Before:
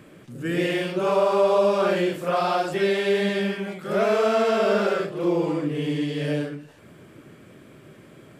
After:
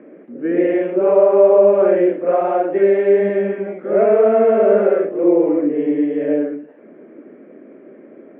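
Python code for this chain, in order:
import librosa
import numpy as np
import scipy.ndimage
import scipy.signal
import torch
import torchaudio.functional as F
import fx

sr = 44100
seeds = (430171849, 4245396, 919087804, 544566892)

y = scipy.signal.sosfilt(scipy.signal.ellip(3, 1.0, 40, [240.0, 2100.0], 'bandpass', fs=sr, output='sos'), x)
y = fx.low_shelf_res(y, sr, hz=740.0, db=8.5, q=1.5)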